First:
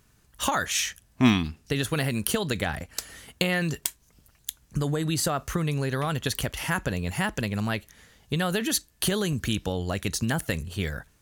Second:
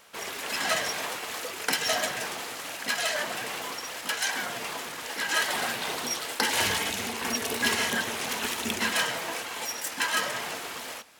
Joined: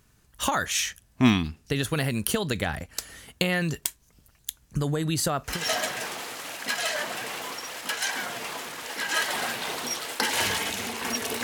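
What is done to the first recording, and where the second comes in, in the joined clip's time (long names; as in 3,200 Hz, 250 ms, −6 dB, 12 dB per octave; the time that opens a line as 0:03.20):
first
0:05.54: continue with second from 0:01.74, crossfade 0.22 s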